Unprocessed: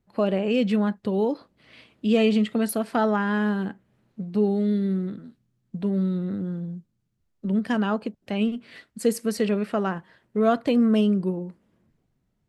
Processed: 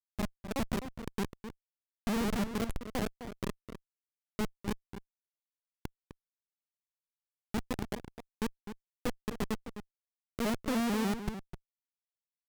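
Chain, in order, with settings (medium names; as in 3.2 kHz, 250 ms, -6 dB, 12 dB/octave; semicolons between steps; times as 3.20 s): Schmitt trigger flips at -18.5 dBFS; echo from a far wall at 44 m, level -10 dB; vibrato with a chosen wave saw up 6.7 Hz, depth 160 cents; trim -5 dB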